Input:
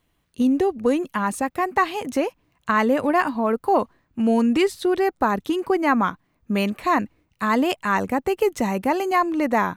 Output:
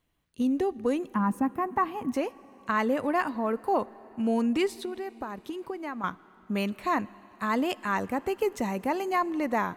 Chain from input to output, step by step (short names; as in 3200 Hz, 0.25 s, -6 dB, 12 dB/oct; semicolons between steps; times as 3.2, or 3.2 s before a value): 1.14–2.14 graphic EQ 125/250/500/1000/2000/4000/8000 Hz +5/+10/-8/+5/-4/-12/-11 dB; 4.67–6.04 compressor 6:1, threshold -26 dBFS, peak gain reduction 12 dB; plate-style reverb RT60 4.4 s, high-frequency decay 0.95×, DRR 20 dB; gain -7 dB